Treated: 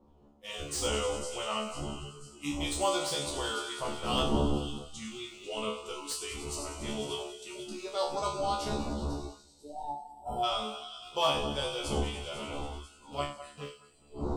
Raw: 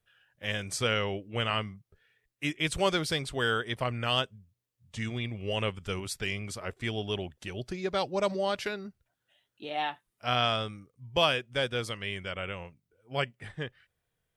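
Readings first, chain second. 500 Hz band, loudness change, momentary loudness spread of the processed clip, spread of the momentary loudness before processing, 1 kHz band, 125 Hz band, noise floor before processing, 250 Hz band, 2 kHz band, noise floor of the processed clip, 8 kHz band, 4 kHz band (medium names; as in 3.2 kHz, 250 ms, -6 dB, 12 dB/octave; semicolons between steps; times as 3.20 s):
-2.0 dB, -2.5 dB, 13 LU, 13 LU, 0.0 dB, -4.0 dB, -83 dBFS, 0.0 dB, -8.5 dB, -60 dBFS, +4.5 dB, -2.5 dB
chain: rattle on loud lows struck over -43 dBFS, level -32 dBFS; wind noise 270 Hz -33 dBFS; graphic EQ 125/1000/2000/4000/8000 Hz -9/+7/-10/+4/+9 dB; two-band feedback delay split 2.4 kHz, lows 207 ms, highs 497 ms, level -12 dB; time-frequency box 9.41–10.43 s, 1–7.2 kHz -20 dB; band-stop 1.6 kHz, Q 5.4; feedback comb 72 Hz, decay 0.42 s, harmonics all, mix 100%; on a send: thinning echo 97 ms, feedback 84%, high-pass 850 Hz, level -11.5 dB; on the sum: spectral noise reduction 14 dB; slew-rate limiter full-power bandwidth 90 Hz; trim +5.5 dB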